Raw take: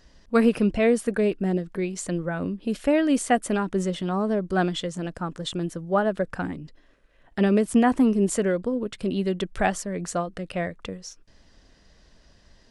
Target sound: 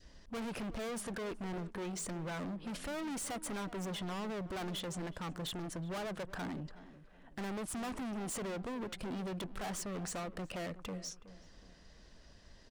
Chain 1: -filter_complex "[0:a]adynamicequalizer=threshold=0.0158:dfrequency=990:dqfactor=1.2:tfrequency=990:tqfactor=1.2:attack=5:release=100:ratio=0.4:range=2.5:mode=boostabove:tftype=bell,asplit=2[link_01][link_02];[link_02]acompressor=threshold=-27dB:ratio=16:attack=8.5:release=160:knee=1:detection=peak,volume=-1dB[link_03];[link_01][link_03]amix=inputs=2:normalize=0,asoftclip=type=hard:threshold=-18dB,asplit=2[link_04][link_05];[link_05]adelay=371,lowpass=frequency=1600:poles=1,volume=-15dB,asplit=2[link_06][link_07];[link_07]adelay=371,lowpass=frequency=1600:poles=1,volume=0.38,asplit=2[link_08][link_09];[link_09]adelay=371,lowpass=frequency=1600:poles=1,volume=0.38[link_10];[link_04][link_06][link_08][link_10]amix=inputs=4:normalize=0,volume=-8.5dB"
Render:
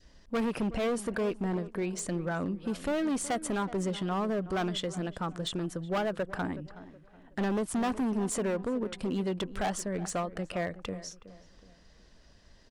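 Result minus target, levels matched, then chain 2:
hard clipping: distortion −7 dB
-filter_complex "[0:a]adynamicequalizer=threshold=0.0158:dfrequency=990:dqfactor=1.2:tfrequency=990:tqfactor=1.2:attack=5:release=100:ratio=0.4:range=2.5:mode=boostabove:tftype=bell,asplit=2[link_01][link_02];[link_02]acompressor=threshold=-27dB:ratio=16:attack=8.5:release=160:knee=1:detection=peak,volume=-1dB[link_03];[link_01][link_03]amix=inputs=2:normalize=0,asoftclip=type=hard:threshold=-30dB,asplit=2[link_04][link_05];[link_05]adelay=371,lowpass=frequency=1600:poles=1,volume=-15dB,asplit=2[link_06][link_07];[link_07]adelay=371,lowpass=frequency=1600:poles=1,volume=0.38,asplit=2[link_08][link_09];[link_09]adelay=371,lowpass=frequency=1600:poles=1,volume=0.38[link_10];[link_04][link_06][link_08][link_10]amix=inputs=4:normalize=0,volume=-8.5dB"

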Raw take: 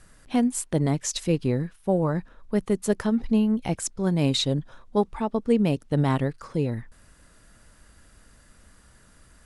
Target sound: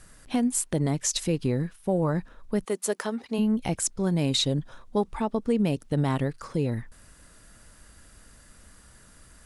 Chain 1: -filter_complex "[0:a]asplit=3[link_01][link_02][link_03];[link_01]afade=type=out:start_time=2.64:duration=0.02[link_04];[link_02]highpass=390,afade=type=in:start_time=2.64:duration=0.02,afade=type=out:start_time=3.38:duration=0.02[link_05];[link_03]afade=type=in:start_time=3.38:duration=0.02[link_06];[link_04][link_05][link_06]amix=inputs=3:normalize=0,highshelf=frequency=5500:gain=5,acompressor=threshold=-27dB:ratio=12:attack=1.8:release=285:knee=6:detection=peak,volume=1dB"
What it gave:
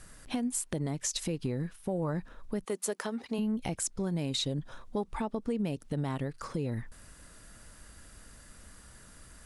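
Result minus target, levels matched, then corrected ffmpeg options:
downward compressor: peak gain reduction +8.5 dB
-filter_complex "[0:a]asplit=3[link_01][link_02][link_03];[link_01]afade=type=out:start_time=2.64:duration=0.02[link_04];[link_02]highpass=390,afade=type=in:start_time=2.64:duration=0.02,afade=type=out:start_time=3.38:duration=0.02[link_05];[link_03]afade=type=in:start_time=3.38:duration=0.02[link_06];[link_04][link_05][link_06]amix=inputs=3:normalize=0,highshelf=frequency=5500:gain=5,acompressor=threshold=-17.5dB:ratio=12:attack=1.8:release=285:knee=6:detection=peak,volume=1dB"

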